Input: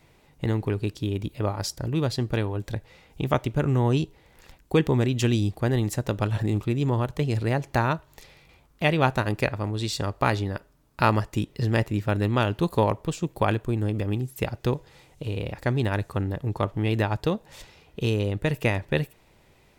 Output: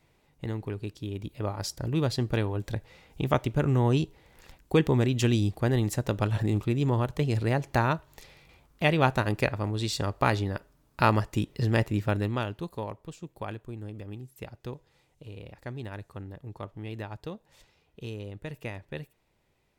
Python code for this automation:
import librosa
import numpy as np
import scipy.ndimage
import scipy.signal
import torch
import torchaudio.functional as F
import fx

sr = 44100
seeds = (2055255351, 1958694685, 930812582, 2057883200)

y = fx.gain(x, sr, db=fx.line((1.02, -8.0), (1.97, -1.5), (12.07, -1.5), (12.74, -13.5)))